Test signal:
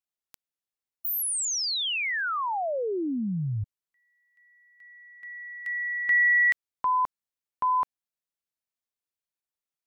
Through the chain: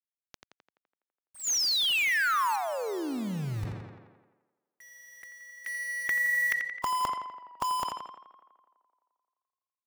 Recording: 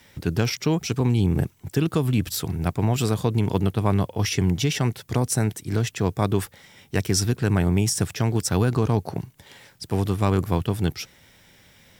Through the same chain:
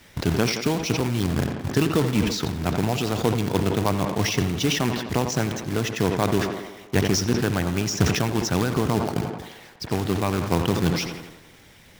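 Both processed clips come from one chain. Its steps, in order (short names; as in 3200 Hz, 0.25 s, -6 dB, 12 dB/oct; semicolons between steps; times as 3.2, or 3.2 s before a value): elliptic low-pass 6600 Hz, stop band 40 dB; high shelf 3900 Hz -4.5 dB; harmonic-percussive split harmonic -11 dB; low shelf 370 Hz +3 dB; in parallel at -0.5 dB: compressor 5:1, threshold -34 dBFS; on the sum: companded quantiser 4-bit; on a send: tape echo 85 ms, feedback 77%, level -12 dB, low-pass 3900 Hz; on the sum: sustainer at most 57 dB/s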